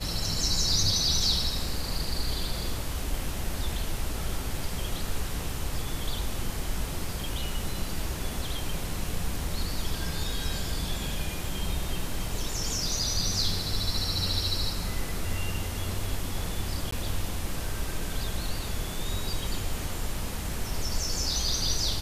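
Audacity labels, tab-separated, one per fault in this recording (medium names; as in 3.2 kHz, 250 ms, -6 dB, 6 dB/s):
16.910000	16.920000	dropout 14 ms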